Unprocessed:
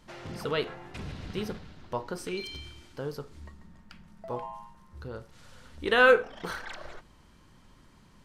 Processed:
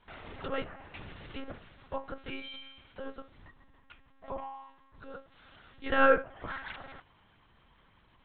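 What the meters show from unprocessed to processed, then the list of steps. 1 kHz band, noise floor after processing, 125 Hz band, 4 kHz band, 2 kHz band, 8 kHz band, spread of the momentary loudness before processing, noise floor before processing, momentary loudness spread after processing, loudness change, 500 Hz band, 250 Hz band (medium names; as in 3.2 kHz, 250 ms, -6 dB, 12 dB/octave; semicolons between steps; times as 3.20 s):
-1.5 dB, -64 dBFS, -9.0 dB, -8.0 dB, -6.0 dB, under -30 dB, 24 LU, -58 dBFS, 24 LU, -4.5 dB, -5.0 dB, -2.5 dB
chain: low-pass that closes with the level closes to 1.9 kHz, closed at -29 dBFS; bass shelf 400 Hz -10.5 dB; monotone LPC vocoder at 8 kHz 270 Hz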